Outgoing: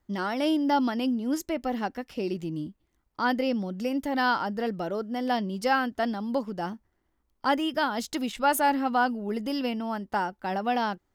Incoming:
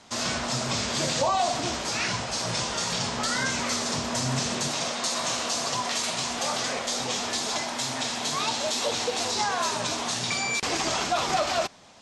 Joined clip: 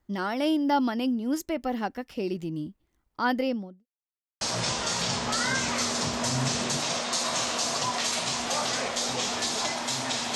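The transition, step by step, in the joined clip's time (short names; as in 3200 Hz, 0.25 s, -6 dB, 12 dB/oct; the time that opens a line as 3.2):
outgoing
3.4–3.86 studio fade out
3.86–4.41 mute
4.41 switch to incoming from 2.32 s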